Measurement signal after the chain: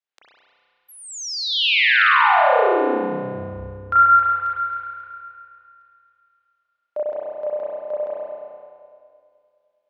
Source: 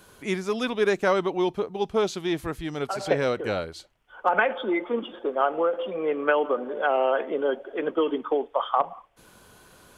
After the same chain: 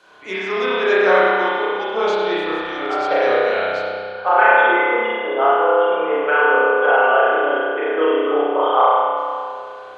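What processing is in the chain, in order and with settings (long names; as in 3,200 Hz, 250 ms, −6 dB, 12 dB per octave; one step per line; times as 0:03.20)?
three-way crossover with the lows and the highs turned down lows −22 dB, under 380 Hz, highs −24 dB, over 6,100 Hz
feedback echo with a low-pass in the loop 103 ms, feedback 76%, low-pass 4,100 Hz, level −8.5 dB
spring reverb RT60 2 s, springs 31 ms, chirp 35 ms, DRR −9 dB
level +1 dB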